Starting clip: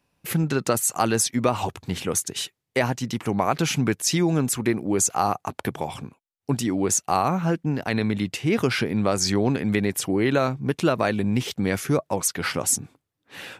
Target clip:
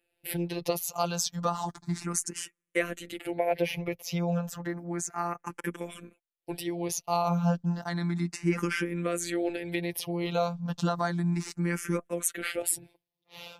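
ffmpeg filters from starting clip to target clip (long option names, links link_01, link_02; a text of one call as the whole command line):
ffmpeg -i in.wav -filter_complex "[0:a]asettb=1/sr,asplit=3[link_01][link_02][link_03];[link_01]atrim=end=3.384[link_04];[link_02]atrim=start=3.38:end=5.46,asetpts=PTS-STARTPTS,afade=type=in:duration=0.004:curve=qsin,afade=type=out:start_time=2.076:duration=0.004:curve=qsin,equalizer=frequency=250:width_type=o:width=1:gain=-10,equalizer=frequency=500:width_type=o:width=1:gain=10,equalizer=frequency=1000:width_type=o:width=1:gain=-7,equalizer=frequency=2000:width_type=o:width=1:gain=7,equalizer=frequency=4000:width_type=o:width=1:gain=-10,equalizer=frequency=8000:width_type=o:width=1:gain=-9[link_05];[link_03]atrim=start=5.456[link_06];[link_04][link_05]acrossfade=duration=0.004:curve1=hsin:curve2=qsin[link_07];[link_07][link_06]acrossfade=duration=0.004:curve1=qsin:curve2=hsin,afftfilt=real='hypot(re,im)*cos(PI*b)':imag='0':win_size=1024:overlap=0.75,asplit=2[link_08][link_09];[link_09]afreqshift=0.32[link_10];[link_08][link_10]amix=inputs=2:normalize=1" out.wav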